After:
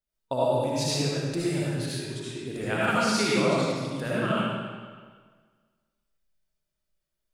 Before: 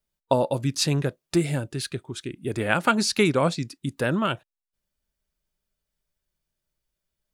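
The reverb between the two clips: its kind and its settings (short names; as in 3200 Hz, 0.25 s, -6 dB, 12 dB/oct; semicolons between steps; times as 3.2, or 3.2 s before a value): digital reverb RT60 1.6 s, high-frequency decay 0.9×, pre-delay 35 ms, DRR -8 dB; gain -10 dB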